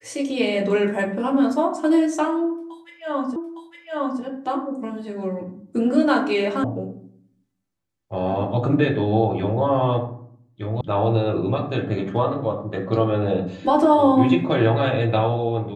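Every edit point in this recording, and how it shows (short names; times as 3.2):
3.36 repeat of the last 0.86 s
6.64 sound cut off
10.81 sound cut off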